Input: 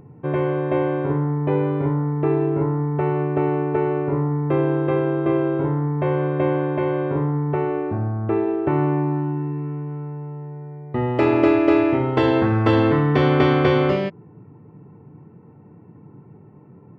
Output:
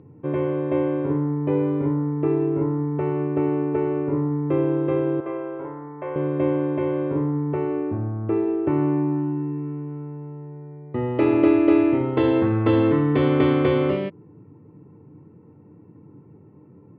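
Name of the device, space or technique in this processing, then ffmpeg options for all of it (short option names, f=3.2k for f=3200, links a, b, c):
guitar cabinet: -filter_complex "[0:a]highpass=77,equalizer=f=90:t=q:w=4:g=7,equalizer=f=300:t=q:w=4:g=7,equalizer=f=500:t=q:w=4:g=4,equalizer=f=730:t=q:w=4:g=-5,equalizer=f=1.6k:t=q:w=4:g=-4,lowpass=f=3.7k:w=0.5412,lowpass=f=3.7k:w=1.3066,asettb=1/sr,asplit=3[a][b][c];[a]atrim=end=5.204[d];[b]atrim=start=5.2:end=6.16,asetpts=PTS-STARTPTS,afade=t=in:d=0.004:c=qsin,afade=t=out:st=0.956:d=0.004:c=qsin,acrossover=split=500 2800:gain=0.141 1 0.0708[e][f][g];[e][f][g]amix=inputs=3:normalize=0[h];[c]atrim=start=6.156[i];[d][h]acrossfade=d=0.004:c1=hsin:c2=qsin[j];[j][i]acrossfade=d=0.004:c1=qsin:c2=hsin,volume=-4.5dB"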